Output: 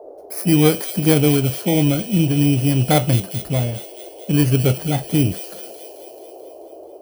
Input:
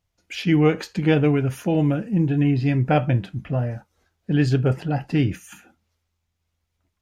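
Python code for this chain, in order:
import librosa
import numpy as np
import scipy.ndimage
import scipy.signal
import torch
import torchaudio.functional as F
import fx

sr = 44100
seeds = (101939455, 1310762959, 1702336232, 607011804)

p1 = fx.bit_reversed(x, sr, seeds[0], block=16)
p2 = fx.quant_float(p1, sr, bits=2)
p3 = p1 + (p2 * 10.0 ** (-6.5 / 20.0))
p4 = fx.echo_wet_highpass(p3, sr, ms=218, feedback_pct=63, hz=3500.0, wet_db=-5.5)
y = fx.dmg_noise_band(p4, sr, seeds[1], low_hz=330.0, high_hz=700.0, level_db=-39.0)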